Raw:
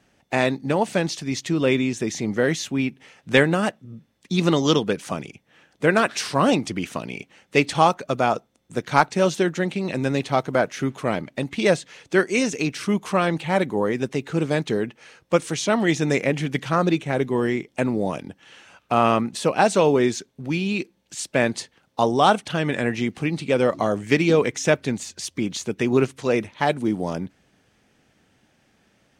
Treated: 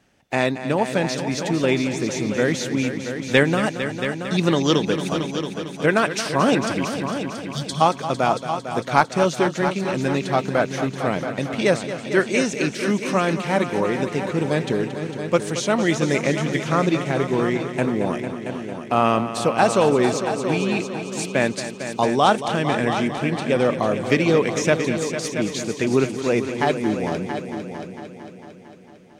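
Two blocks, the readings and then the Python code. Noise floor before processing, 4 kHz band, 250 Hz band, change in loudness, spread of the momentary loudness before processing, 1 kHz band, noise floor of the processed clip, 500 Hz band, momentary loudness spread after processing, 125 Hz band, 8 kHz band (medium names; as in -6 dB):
-64 dBFS, +1.0 dB, +1.0 dB, +1.0 dB, 10 LU, +1.0 dB, -39 dBFS, +1.0 dB, 9 LU, +1.5 dB, +1.0 dB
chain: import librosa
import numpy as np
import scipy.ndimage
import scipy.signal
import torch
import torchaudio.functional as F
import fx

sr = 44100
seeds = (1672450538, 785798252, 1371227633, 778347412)

y = fx.spec_erase(x, sr, start_s=6.85, length_s=0.96, low_hz=250.0, high_hz=3000.0)
y = fx.echo_heads(y, sr, ms=226, heads='all three', feedback_pct=50, wet_db=-12)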